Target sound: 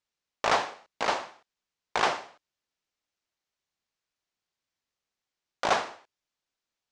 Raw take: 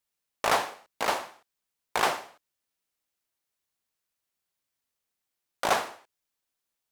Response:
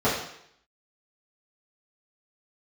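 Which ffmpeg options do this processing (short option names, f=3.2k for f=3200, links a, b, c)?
-af "lowpass=f=6.7k:w=0.5412,lowpass=f=6.7k:w=1.3066"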